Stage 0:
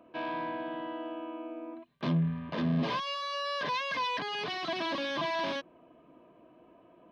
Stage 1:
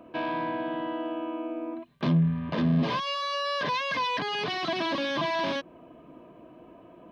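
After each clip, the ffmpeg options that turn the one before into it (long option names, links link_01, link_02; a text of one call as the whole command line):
ffmpeg -i in.wav -filter_complex "[0:a]lowshelf=frequency=240:gain=5.5,asplit=2[link_01][link_02];[link_02]acompressor=threshold=-37dB:ratio=6,volume=1dB[link_03];[link_01][link_03]amix=inputs=2:normalize=0" out.wav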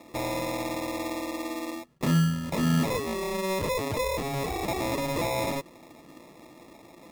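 ffmpeg -i in.wav -af "acrusher=samples=29:mix=1:aa=0.000001" out.wav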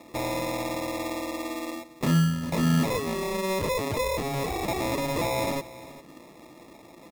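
ffmpeg -i in.wav -af "aecho=1:1:400:0.133,volume=1dB" out.wav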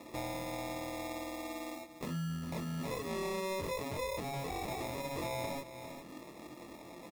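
ffmpeg -i in.wav -filter_complex "[0:a]alimiter=limit=-23dB:level=0:latency=1:release=13,acompressor=threshold=-43dB:ratio=2,asplit=2[link_01][link_02];[link_02]adelay=23,volume=-3dB[link_03];[link_01][link_03]amix=inputs=2:normalize=0,volume=-2.5dB" out.wav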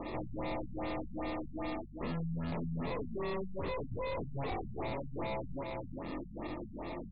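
ffmpeg -i in.wav -af "aeval=exprs='(tanh(251*val(0)+0.45)-tanh(0.45))/251':channel_layout=same,aeval=exprs='val(0)+0.000631*(sin(2*PI*50*n/s)+sin(2*PI*2*50*n/s)/2+sin(2*PI*3*50*n/s)/3+sin(2*PI*4*50*n/s)/4+sin(2*PI*5*50*n/s)/5)':channel_layout=same,afftfilt=real='re*lt(b*sr/1024,210*pow(5000/210,0.5+0.5*sin(2*PI*2.5*pts/sr)))':imag='im*lt(b*sr/1024,210*pow(5000/210,0.5+0.5*sin(2*PI*2.5*pts/sr)))':win_size=1024:overlap=0.75,volume=12.5dB" out.wav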